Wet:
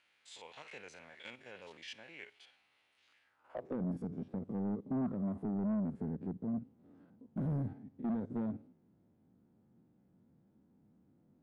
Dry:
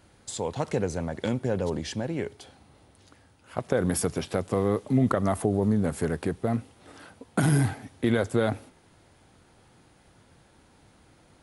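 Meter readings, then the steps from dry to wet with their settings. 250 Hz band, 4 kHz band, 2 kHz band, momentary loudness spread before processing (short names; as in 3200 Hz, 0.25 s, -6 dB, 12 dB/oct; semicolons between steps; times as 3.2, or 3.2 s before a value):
-9.5 dB, under -10 dB, under -15 dB, 9 LU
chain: stepped spectrum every 50 ms; band-pass sweep 2500 Hz -> 210 Hz, 3.23–3.8; soft clip -29.5 dBFS, distortion -10 dB; gain -1.5 dB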